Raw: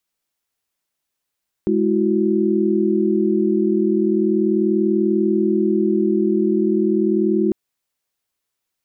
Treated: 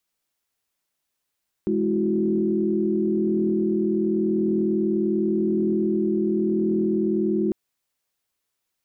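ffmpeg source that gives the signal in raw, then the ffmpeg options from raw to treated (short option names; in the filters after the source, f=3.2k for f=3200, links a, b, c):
-f lavfi -i "aevalsrc='0.112*(sin(2*PI*207.65*t)+sin(2*PI*329.63*t)+sin(2*PI*369.99*t))':d=5.85:s=44100"
-af "alimiter=limit=-16.5dB:level=0:latency=1:release=10"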